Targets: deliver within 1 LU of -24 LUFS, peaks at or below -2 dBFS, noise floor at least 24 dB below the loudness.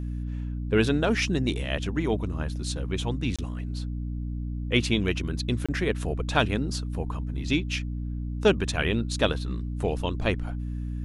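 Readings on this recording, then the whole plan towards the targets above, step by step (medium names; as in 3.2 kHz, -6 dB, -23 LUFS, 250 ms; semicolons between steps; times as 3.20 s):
dropouts 2; longest dropout 26 ms; hum 60 Hz; highest harmonic 300 Hz; hum level -29 dBFS; loudness -28.0 LUFS; peak level -7.5 dBFS; loudness target -24.0 LUFS
-> interpolate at 3.36/5.66 s, 26 ms; de-hum 60 Hz, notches 5; trim +4 dB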